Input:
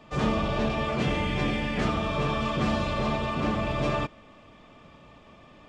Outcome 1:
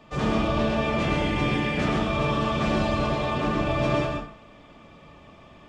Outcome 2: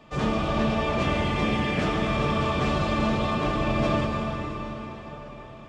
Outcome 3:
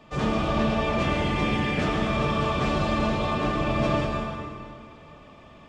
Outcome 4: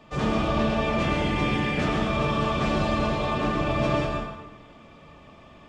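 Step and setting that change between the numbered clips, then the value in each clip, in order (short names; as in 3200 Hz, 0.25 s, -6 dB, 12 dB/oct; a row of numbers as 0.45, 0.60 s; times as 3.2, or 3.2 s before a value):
plate-style reverb, RT60: 0.5, 5, 2.3, 1.1 s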